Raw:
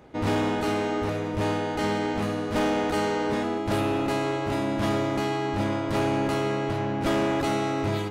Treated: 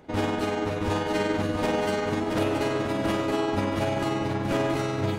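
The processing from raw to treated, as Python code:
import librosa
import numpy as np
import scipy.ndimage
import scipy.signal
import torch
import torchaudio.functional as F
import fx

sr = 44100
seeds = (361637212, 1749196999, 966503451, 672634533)

y = fx.stretch_grains(x, sr, factor=0.64, grain_ms=97.0)
y = fx.rider(y, sr, range_db=10, speed_s=0.5)
y = fx.echo_feedback(y, sr, ms=673, feedback_pct=31, wet_db=-5.0)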